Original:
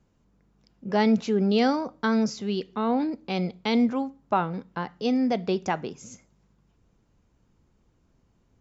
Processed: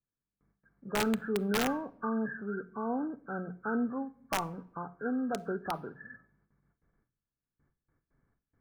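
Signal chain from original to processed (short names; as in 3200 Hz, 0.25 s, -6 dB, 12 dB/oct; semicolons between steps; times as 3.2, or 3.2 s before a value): nonlinear frequency compression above 1100 Hz 4:1; resonator 140 Hz, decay 0.46 s, harmonics odd, mix 50%; wrapped overs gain 19 dB; gate with hold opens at -60 dBFS; notches 60/120/180 Hz; shoebox room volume 1900 m³, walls furnished, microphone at 0.34 m; gain -3 dB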